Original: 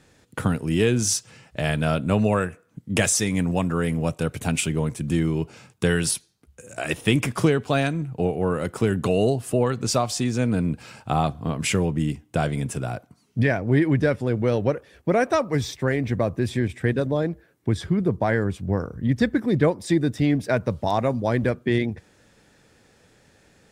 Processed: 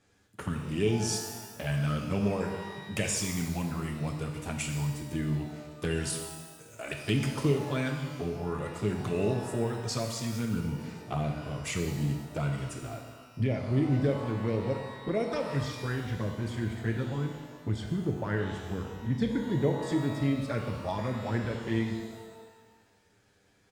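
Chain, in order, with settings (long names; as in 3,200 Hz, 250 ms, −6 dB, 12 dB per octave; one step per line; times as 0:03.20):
flanger swept by the level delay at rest 10.1 ms, full sweep at −15.5 dBFS
pitch shifter −1 semitone
reverb with rising layers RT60 1.3 s, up +12 semitones, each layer −8 dB, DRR 3 dB
level −8 dB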